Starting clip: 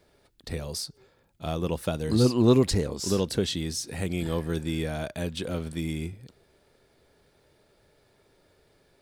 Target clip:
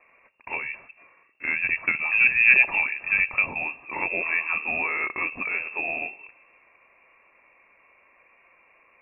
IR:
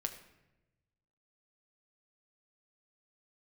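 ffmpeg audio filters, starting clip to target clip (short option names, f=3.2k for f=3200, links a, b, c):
-filter_complex "[0:a]bandreject=f=1.3k:w=11,acrossover=split=870[a][b];[b]acontrast=71[c];[a][c]amix=inputs=2:normalize=0,lowshelf=f=180:g=-11,asplit=2[d][e];[1:a]atrim=start_sample=2205[f];[e][f]afir=irnorm=-1:irlink=0,volume=-9dB[g];[d][g]amix=inputs=2:normalize=0,lowpass=f=2.4k:t=q:w=0.5098,lowpass=f=2.4k:t=q:w=0.6013,lowpass=f=2.4k:t=q:w=0.9,lowpass=f=2.4k:t=q:w=2.563,afreqshift=-2800,equalizer=f=1.4k:t=o:w=0.2:g=-7.5,volume=3dB"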